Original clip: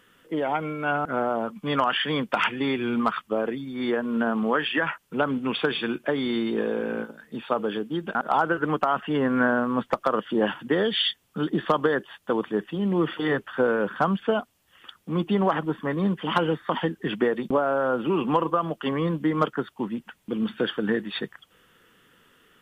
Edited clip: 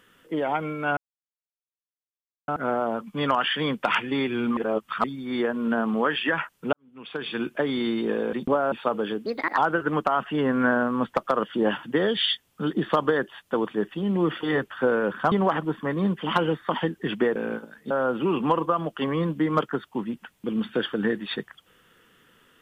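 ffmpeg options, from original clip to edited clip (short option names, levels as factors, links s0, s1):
-filter_complex "[0:a]asplit=12[s0][s1][s2][s3][s4][s5][s6][s7][s8][s9][s10][s11];[s0]atrim=end=0.97,asetpts=PTS-STARTPTS,afade=t=out:st=0.966:d=0.004:c=hsin,apad=pad_dur=1.51[s12];[s1]atrim=start=0.97:end=3.062,asetpts=PTS-STARTPTS,afade=t=in:d=0.004:c=hsin[s13];[s2]atrim=start=3.058:end=3.532,asetpts=PTS-STARTPTS,areverse[s14];[s3]atrim=start=3.528:end=5.22,asetpts=PTS-STARTPTS,afade=t=out:st=1.688:d=0.004:c=hsin[s15];[s4]atrim=start=5.22:end=6.822,asetpts=PTS-STARTPTS,afade=t=in:d=0.7:c=qua[s16];[s5]atrim=start=17.358:end=17.752[s17];[s6]atrim=start=7.368:end=7.914[s18];[s7]atrim=start=7.91:end=8.34,asetpts=PTS-STARTPTS,asetrate=59976,aresample=44100,atrim=end_sample=13943,asetpts=PTS-STARTPTS[s19];[s8]atrim=start=8.336:end=14.082[s20];[s9]atrim=start=15.318:end=17.362[s21];[s10]atrim=start=6.818:end=7.372[s22];[s11]atrim=start=17.748[s23];[s12][s13]concat=n=2:v=0:a=1[s24];[s24][s14]acrossfade=d=0.004:c1=hsin:c2=hsin[s25];[s15][s16]concat=n=2:v=0:a=1[s26];[s25][s26]acrossfade=d=0.004:c1=hsin:c2=hsin[s27];[s27][s17]acrossfade=d=0.004:c1=hsin:c2=hsin[s28];[s28][s18]acrossfade=d=0.004:c1=hsin:c2=hsin[s29];[s29][s19]acrossfade=d=0.004:c1=hsin:c2=hsin[s30];[s30][s20]acrossfade=d=0.004:c1=hsin:c2=hsin[s31];[s31][s21]acrossfade=d=0.004:c1=hsin:c2=hsin[s32];[s32][s22]acrossfade=d=0.004:c1=hsin:c2=hsin[s33];[s33][s23]acrossfade=d=0.004:c1=hsin:c2=hsin"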